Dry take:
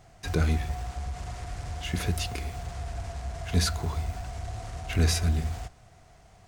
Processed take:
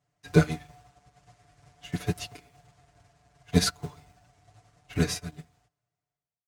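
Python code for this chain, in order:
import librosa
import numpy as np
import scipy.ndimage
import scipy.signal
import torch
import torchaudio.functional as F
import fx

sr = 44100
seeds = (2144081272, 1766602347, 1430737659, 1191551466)

y = fx.fade_out_tail(x, sr, length_s=1.66)
y = scipy.signal.sosfilt(scipy.signal.butter(2, 81.0, 'highpass', fs=sr, output='sos'), y)
y = fx.notch(y, sr, hz=760.0, q=15.0)
y = y + 0.87 * np.pad(y, (int(6.8 * sr / 1000.0), 0))[:len(y)]
y = fx.upward_expand(y, sr, threshold_db=-40.0, expansion=2.5)
y = y * 10.0 ** (7.0 / 20.0)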